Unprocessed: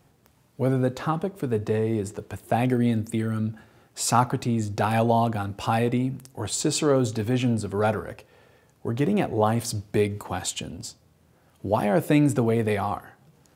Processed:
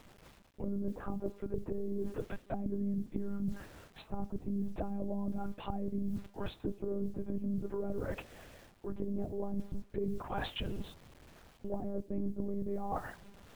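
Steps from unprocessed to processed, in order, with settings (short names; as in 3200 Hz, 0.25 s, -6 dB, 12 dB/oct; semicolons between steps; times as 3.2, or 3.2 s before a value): treble ducked by the level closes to 400 Hz, closed at -20.5 dBFS; monotone LPC vocoder at 8 kHz 200 Hz; bit-crush 10-bit; reverse; compressor 6:1, threshold -35 dBFS, peak gain reduction 18 dB; reverse; gain +2 dB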